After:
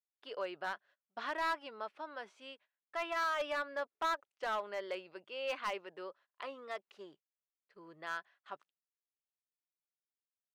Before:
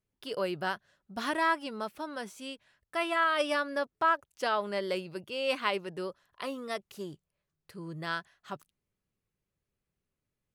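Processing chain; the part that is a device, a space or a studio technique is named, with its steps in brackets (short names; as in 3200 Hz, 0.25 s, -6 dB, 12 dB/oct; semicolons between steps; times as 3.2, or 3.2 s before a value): walkie-talkie (BPF 510–3000 Hz; hard clip -25.5 dBFS, distortion -12 dB; gate -58 dBFS, range -20 dB); gain -4.5 dB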